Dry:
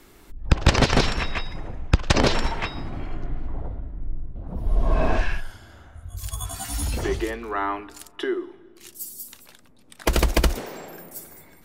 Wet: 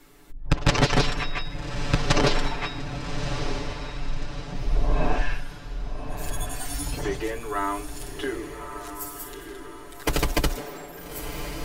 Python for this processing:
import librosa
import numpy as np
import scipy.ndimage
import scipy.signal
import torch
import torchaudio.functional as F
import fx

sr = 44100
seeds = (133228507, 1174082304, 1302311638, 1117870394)

y = x + 0.88 * np.pad(x, (int(6.9 * sr / 1000.0), 0))[:len(x)]
y = fx.echo_diffused(y, sr, ms=1217, feedback_pct=44, wet_db=-8)
y = y * 10.0 ** (-4.5 / 20.0)